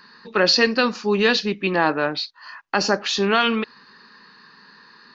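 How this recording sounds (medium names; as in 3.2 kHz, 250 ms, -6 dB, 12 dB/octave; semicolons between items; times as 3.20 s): noise floor -51 dBFS; spectral tilt -3.5 dB/octave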